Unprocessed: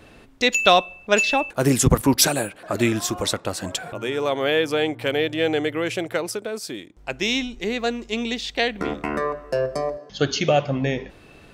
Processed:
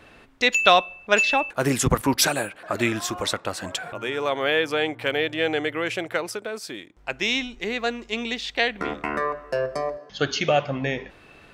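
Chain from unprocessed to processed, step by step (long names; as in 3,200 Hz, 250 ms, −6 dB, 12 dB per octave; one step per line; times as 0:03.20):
parametric band 1,600 Hz +7.5 dB 2.7 octaves
level −5.5 dB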